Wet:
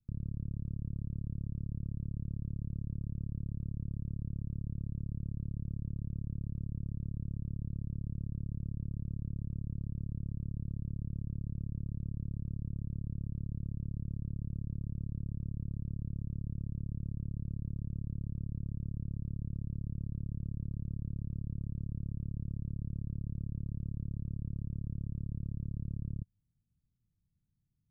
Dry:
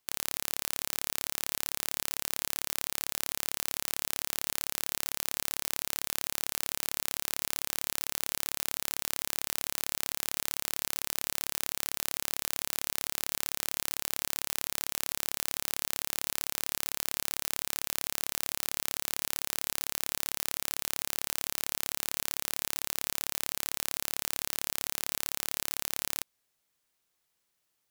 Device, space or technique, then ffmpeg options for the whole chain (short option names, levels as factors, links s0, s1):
the neighbour's flat through the wall: -af "lowpass=f=170:w=0.5412,lowpass=f=170:w=1.3066,equalizer=f=100:t=o:w=0.77:g=4,volume=7.5"